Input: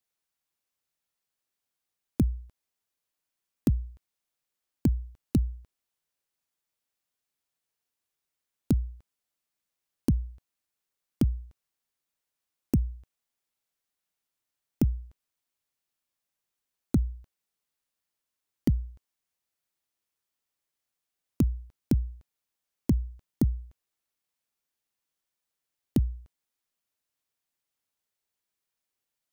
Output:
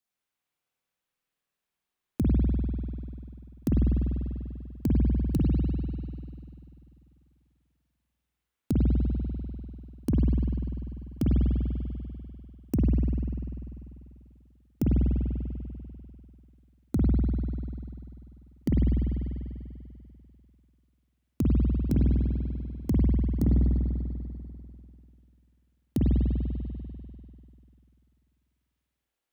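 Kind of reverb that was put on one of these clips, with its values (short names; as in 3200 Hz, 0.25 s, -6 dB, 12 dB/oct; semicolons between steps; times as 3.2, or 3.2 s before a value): spring tank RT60 2.6 s, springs 49 ms, chirp 70 ms, DRR -6 dB; gain -3.5 dB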